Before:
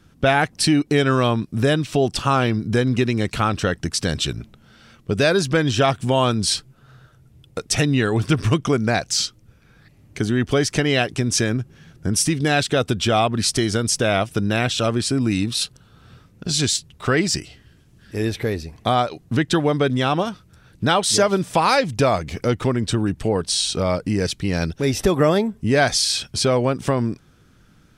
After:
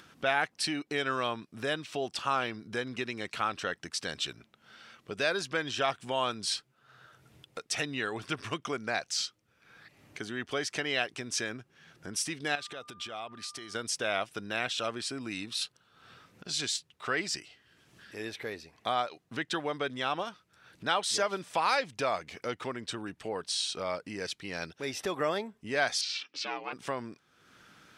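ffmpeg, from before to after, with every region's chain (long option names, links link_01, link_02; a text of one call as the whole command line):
ffmpeg -i in.wav -filter_complex "[0:a]asettb=1/sr,asplit=3[link_01][link_02][link_03];[link_01]atrim=end=12.554[link_04];[link_02]atrim=start=12.55:end=13.75,asetpts=PTS-STARTPTS,afade=type=in:duration=0.004:curve=qsin,afade=type=out:start_time=1.196:duration=0.004:curve=qsin,acompressor=threshold=-25dB:ratio=6:attack=3.2:release=140:knee=1:detection=peak,aeval=exprs='val(0)+0.00631*sin(2*PI*1200*n/s)':channel_layout=same[link_05];[link_03]atrim=start=13.746[link_06];[link_04][link_05]acrossfade=duration=0.004:curve1=hsin:curve2=qsin[link_07];[link_07][link_06]acrossfade=duration=0.004:curve1=qsin:curve2=hsin,asettb=1/sr,asplit=3[link_08][link_09][link_10];[link_08]atrim=end=26.014[link_11];[link_09]atrim=start=26.01:end=26.73,asetpts=PTS-STARTPTS,afade=type=in:duration=0.004:curve=qsin,afade=type=out:start_time=0.716:duration=0.004:curve=qsin,aeval=exprs='val(0)*sin(2*PI*190*n/s)':channel_layout=same,highpass=240,equalizer=frequency=350:width_type=q:width=4:gain=-9,equalizer=frequency=650:width_type=q:width=4:gain=-9,equalizer=frequency=2500:width_type=q:width=4:gain=8,lowpass=frequency=6000:width=0.5412,lowpass=frequency=6000:width=1.3066[link_12];[link_10]atrim=start=26.726[link_13];[link_11][link_12]acrossfade=duration=0.004:curve1=hsin:curve2=qsin[link_14];[link_14][link_13]acrossfade=duration=0.004:curve1=qsin:curve2=hsin,highpass=frequency=1200:poles=1,highshelf=frequency=5200:gain=-10.5,acompressor=mode=upward:threshold=-39dB:ratio=2.5,volume=-5.5dB" out.wav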